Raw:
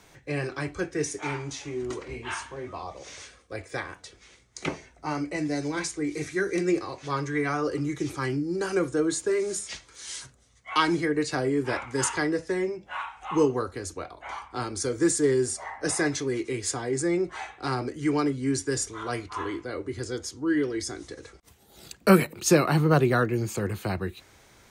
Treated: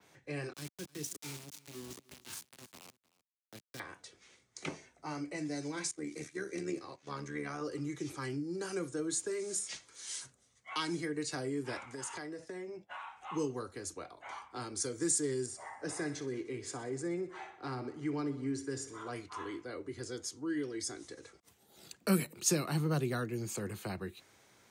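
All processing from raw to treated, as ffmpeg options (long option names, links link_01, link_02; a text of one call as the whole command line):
ffmpeg -i in.wav -filter_complex "[0:a]asettb=1/sr,asplit=3[link_01][link_02][link_03];[link_01]atrim=end=0.534[link_04];[link_02]atrim=start=0.53:end=3.8,asetpts=PTS-STARTPTS,afade=type=in:duration=0.004:curve=qsin,afade=type=out:start_time=3.266:duration=0.004:curve=qsin,aeval=exprs='val(0)*gte(abs(val(0)),0.0299)':channel_layout=same,acrossover=split=300|3000[link_05][link_06][link_07];[link_06]acompressor=threshold=-56dB:ratio=2:attack=3.2:release=140:knee=2.83:detection=peak[link_08];[link_05][link_08][link_07]amix=inputs=3:normalize=0,aecho=1:1:308:0.0841,atrim=end_sample=144207[link_09];[link_03]atrim=start=3.796[link_10];[link_04][link_09]acrossfade=duration=0.004:curve1=hsin:curve2=qsin[link_11];[link_11][link_10]acrossfade=duration=0.004:curve1=qsin:curve2=hsin,asettb=1/sr,asplit=3[link_12][link_13][link_14];[link_12]atrim=end=5.914[link_15];[link_13]atrim=start=5.91:end=7.61,asetpts=PTS-STARTPTS,afade=type=in:duration=0.004:curve=qsin,afade=type=out:start_time=1.696:duration=0.004:curve=qsin,agate=range=-10dB:threshold=-39dB:ratio=16:release=100:detection=peak,tremolo=f=74:d=0.621[link_16];[link_14]atrim=start=7.606[link_17];[link_15][link_16]acrossfade=duration=0.004:curve1=hsin:curve2=qsin[link_18];[link_18][link_17]acrossfade=duration=0.004:curve1=qsin:curve2=hsin,asettb=1/sr,asplit=3[link_19][link_20][link_21];[link_19]atrim=end=11.944[link_22];[link_20]atrim=start=11.94:end=13.16,asetpts=PTS-STARTPTS,afade=type=in:duration=0.004:curve=qsin,afade=type=out:start_time=1.216:duration=0.004:curve=qsin,acompressor=threshold=-32dB:ratio=6:attack=3.2:release=140:knee=1:detection=peak,agate=range=-33dB:threshold=-46dB:ratio=3:release=100:detection=peak,equalizer=frequency=690:width=2.7:gain=4.5[link_23];[link_21]atrim=start=13.156[link_24];[link_22][link_23]acrossfade=duration=0.004:curve1=hsin:curve2=qsin[link_25];[link_25][link_24]acrossfade=duration=0.004:curve1=qsin:curve2=hsin,asettb=1/sr,asplit=3[link_26][link_27][link_28];[link_26]atrim=end=15.464[link_29];[link_27]atrim=start=15.46:end=19.16,asetpts=PTS-STARTPTS,afade=type=in:duration=0.004:curve=qsin,afade=type=out:start_time=3.696:duration=0.004:curve=qsin,lowpass=frequency=2200:poles=1,aecho=1:1:62|124|186|248|310|372:0.188|0.109|0.0634|0.0368|0.0213|0.0124,atrim=end_sample=163170[link_30];[link_28]atrim=start=19.156[link_31];[link_29][link_30]acrossfade=duration=0.004:curve1=hsin:curve2=qsin[link_32];[link_32][link_31]acrossfade=duration=0.004:curve1=qsin:curve2=hsin,highpass=120,adynamicequalizer=threshold=0.00501:dfrequency=8900:dqfactor=0.72:tfrequency=8900:tqfactor=0.72:attack=5:release=100:ratio=0.375:range=3:mode=boostabove:tftype=bell,acrossover=split=270|3000[link_33][link_34][link_35];[link_34]acompressor=threshold=-33dB:ratio=2[link_36];[link_33][link_36][link_35]amix=inputs=3:normalize=0,volume=-8dB" out.wav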